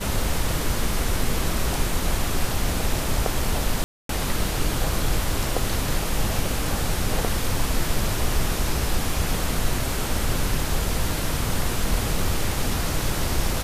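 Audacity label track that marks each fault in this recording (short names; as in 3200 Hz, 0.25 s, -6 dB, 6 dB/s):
3.840000	4.090000	gap 0.253 s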